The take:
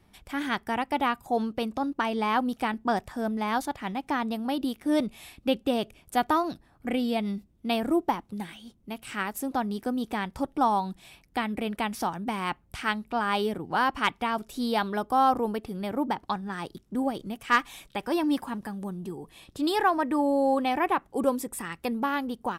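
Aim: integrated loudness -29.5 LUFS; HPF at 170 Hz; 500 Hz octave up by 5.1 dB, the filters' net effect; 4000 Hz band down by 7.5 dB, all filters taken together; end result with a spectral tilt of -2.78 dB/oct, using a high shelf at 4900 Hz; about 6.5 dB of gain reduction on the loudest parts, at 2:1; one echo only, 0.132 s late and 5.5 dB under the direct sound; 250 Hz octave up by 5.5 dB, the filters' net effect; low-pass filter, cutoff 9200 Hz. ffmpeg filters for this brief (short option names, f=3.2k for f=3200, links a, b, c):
-af "highpass=170,lowpass=9.2k,equalizer=f=250:t=o:g=6,equalizer=f=500:t=o:g=5,equalizer=f=4k:t=o:g=-9,highshelf=f=4.9k:g=-4,acompressor=threshold=-26dB:ratio=2,aecho=1:1:132:0.531,volume=-1.5dB"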